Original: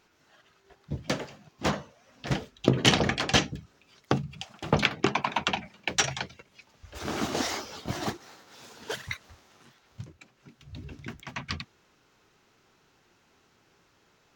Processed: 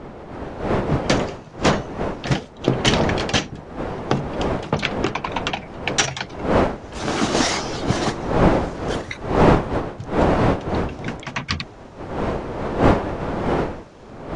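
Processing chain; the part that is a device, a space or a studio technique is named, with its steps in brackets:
smartphone video outdoors (wind on the microphone 610 Hz −29 dBFS; automatic gain control gain up to 13 dB; level −1 dB; AAC 64 kbit/s 22,050 Hz)

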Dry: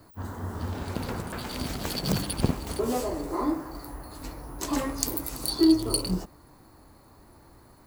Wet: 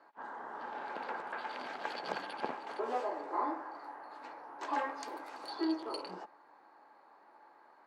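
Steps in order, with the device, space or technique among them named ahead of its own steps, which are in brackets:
high-pass filter 200 Hz 12 dB per octave
tin-can telephone (band-pass filter 620–2,100 Hz; hollow resonant body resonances 850/1,600 Hz, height 9 dB)
level −2 dB

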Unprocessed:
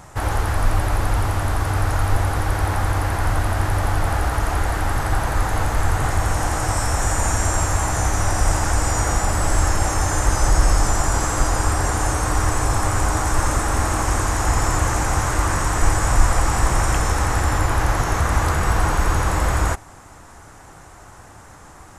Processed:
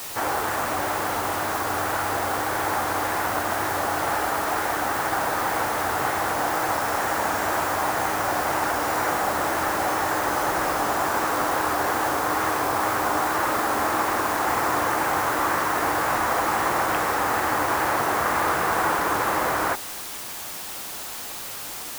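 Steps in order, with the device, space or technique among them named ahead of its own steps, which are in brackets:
wax cylinder (band-pass filter 310–2,600 Hz; tape wow and flutter; white noise bed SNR 10 dB)
level +1.5 dB

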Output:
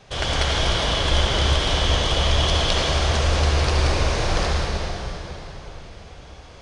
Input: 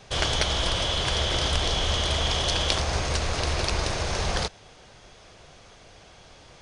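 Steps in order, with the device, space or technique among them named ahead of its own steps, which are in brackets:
swimming-pool hall (convolution reverb RT60 4.0 s, pre-delay 59 ms, DRR −4 dB; high-shelf EQ 4,900 Hz −5.5 dB)

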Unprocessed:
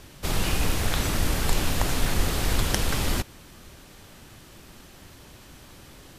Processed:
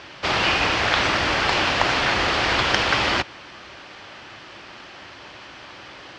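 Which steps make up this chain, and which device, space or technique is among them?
overdrive pedal into a guitar cabinet (mid-hump overdrive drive 14 dB, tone 6,900 Hz, clips at −1.5 dBFS; loudspeaker in its box 78–4,600 Hz, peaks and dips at 86 Hz −4 dB, 160 Hz −7 dB, 240 Hz −6 dB, 440 Hz −4 dB, 3,800 Hz −5 dB)
level +4.5 dB

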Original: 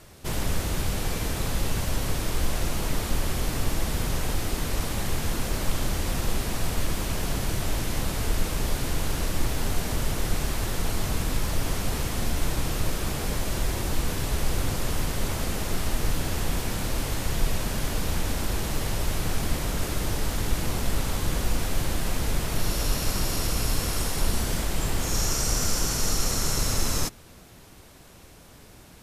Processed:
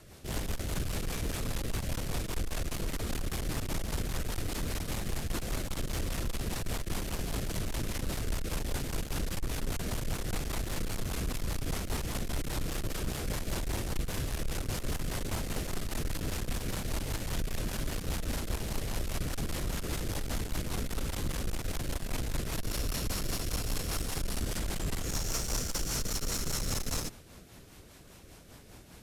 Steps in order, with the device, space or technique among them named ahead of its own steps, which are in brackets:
overdriven rotary cabinet (tube saturation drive 26 dB, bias 0.35; rotating-speaker cabinet horn 5 Hz)

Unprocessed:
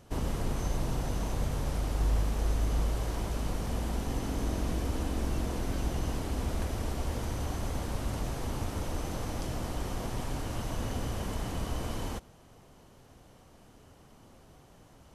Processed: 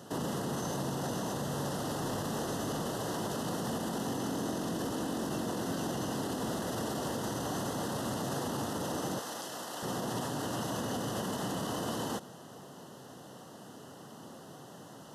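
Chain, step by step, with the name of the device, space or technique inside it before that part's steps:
PA system with an anti-feedback notch (high-pass filter 140 Hz 24 dB per octave; Butterworth band-reject 2,300 Hz, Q 3; brickwall limiter −35.5 dBFS, peak gain reduction 11 dB)
0:09.19–0:09.83: high-pass filter 910 Hz 6 dB per octave
level +9 dB

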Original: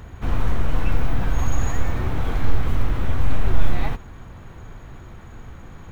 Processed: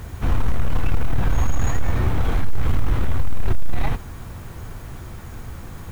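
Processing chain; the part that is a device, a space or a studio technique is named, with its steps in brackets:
open-reel tape (soft clipping −12.5 dBFS, distortion −13 dB; parametric band 90 Hz +3 dB 1.03 octaves; white noise bed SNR 37 dB)
level +3.5 dB

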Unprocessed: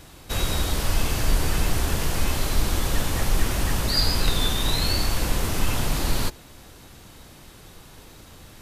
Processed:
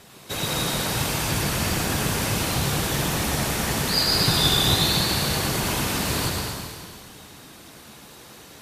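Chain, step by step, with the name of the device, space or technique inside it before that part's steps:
0:04.12–0:04.76: comb filter 2.8 ms, depth 72%
feedback echo with a high-pass in the loop 110 ms, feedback 68%, level −7 dB
whispering ghost (random phases in short frames; high-pass filter 250 Hz 6 dB per octave; convolution reverb RT60 1.7 s, pre-delay 90 ms, DRR 0.5 dB)

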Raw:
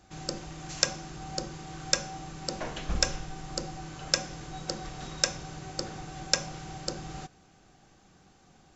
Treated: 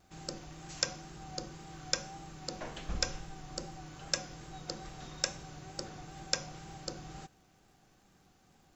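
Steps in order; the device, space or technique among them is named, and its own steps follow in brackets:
vinyl LP (tape wow and flutter; surface crackle 77 per second −53 dBFS; pink noise bed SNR 35 dB)
level −6.5 dB

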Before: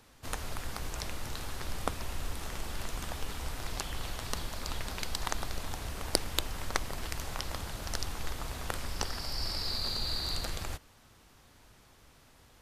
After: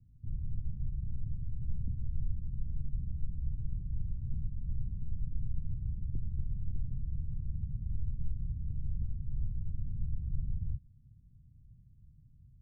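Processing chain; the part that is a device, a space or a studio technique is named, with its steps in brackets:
the neighbour's flat through the wall (low-pass filter 160 Hz 24 dB per octave; parametric band 130 Hz +5.5 dB 0.89 octaves)
level +3.5 dB

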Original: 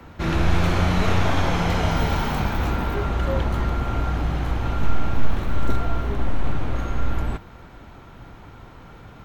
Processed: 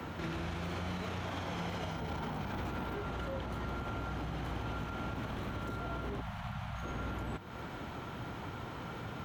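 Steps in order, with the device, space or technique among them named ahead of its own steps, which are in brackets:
broadcast voice chain (high-pass filter 92 Hz 12 dB per octave; de-essing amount 80%; downward compressor 4 to 1, threshold −40 dBFS, peak gain reduction 18 dB; parametric band 3,100 Hz +3 dB 0.22 octaves; brickwall limiter −32.5 dBFS, peak gain reduction 5 dB)
0:06.21–0:06.83: Chebyshev band-stop filter 200–680 Hz, order 3
level +3 dB

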